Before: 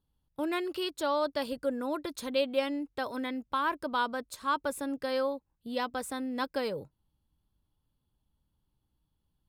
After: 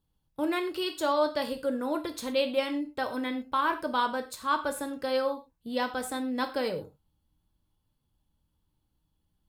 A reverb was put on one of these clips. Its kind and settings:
reverb whose tail is shaped and stops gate 140 ms falling, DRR 5.5 dB
level +1.5 dB

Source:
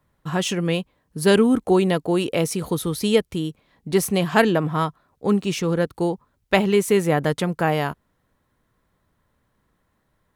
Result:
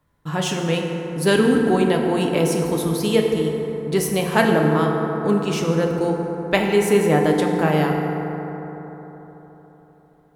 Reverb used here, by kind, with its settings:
feedback delay network reverb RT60 4 s, high-frequency decay 0.35×, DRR 0.5 dB
level −1 dB

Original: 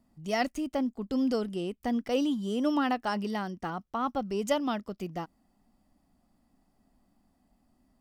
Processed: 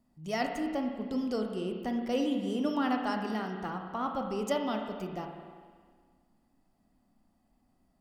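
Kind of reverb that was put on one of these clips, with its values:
spring reverb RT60 1.7 s, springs 32/51 ms, chirp 25 ms, DRR 3 dB
level −3.5 dB

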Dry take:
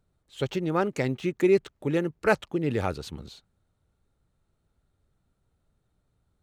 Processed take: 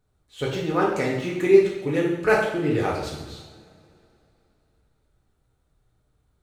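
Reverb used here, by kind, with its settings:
coupled-rooms reverb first 0.77 s, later 3.1 s, from −21 dB, DRR −5 dB
level −1.5 dB

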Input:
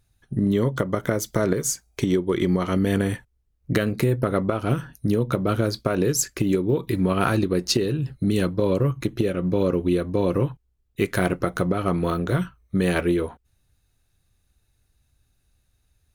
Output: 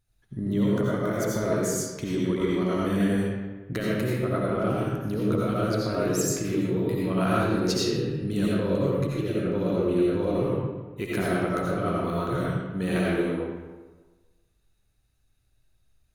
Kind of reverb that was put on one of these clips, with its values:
comb and all-pass reverb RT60 1.3 s, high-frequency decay 0.65×, pre-delay 45 ms, DRR −6 dB
level −9.5 dB

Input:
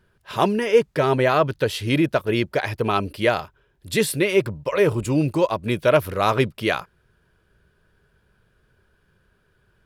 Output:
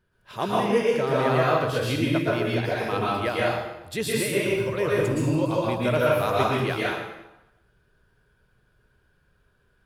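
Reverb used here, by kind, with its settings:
dense smooth reverb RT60 0.95 s, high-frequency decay 0.85×, pre-delay 105 ms, DRR −5.5 dB
level −9 dB

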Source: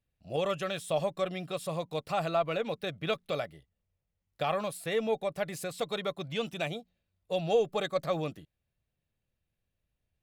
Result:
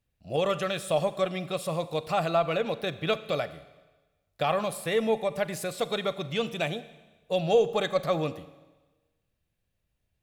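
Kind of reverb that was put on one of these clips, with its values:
four-comb reverb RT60 1.2 s, combs from 32 ms, DRR 14 dB
level +4 dB

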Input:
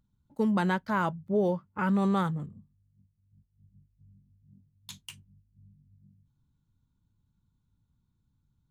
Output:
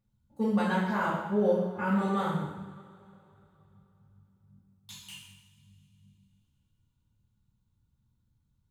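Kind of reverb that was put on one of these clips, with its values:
coupled-rooms reverb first 0.92 s, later 3.4 s, from −20 dB, DRR −9 dB
level −9 dB

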